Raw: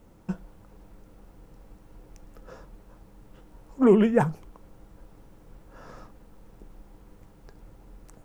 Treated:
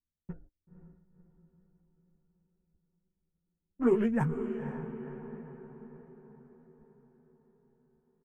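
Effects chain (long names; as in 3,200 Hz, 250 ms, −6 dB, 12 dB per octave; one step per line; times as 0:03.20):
adaptive Wiener filter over 41 samples
noise gate −41 dBFS, range −36 dB
low-shelf EQ 130 Hz +5 dB
double-tracking delay 13 ms −4 dB
flanger 0.94 Hz, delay 0.7 ms, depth 2.7 ms, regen −50%
graphic EQ with 15 bands 630 Hz −5 dB, 1,600 Hz +4 dB, 4,000 Hz −11 dB
on a send: feedback delay with all-pass diffusion 516 ms, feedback 52%, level −9 dB
on the sum: low-pass that shuts in the quiet parts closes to 1,200 Hz, open at −22 dBFS
level −5 dB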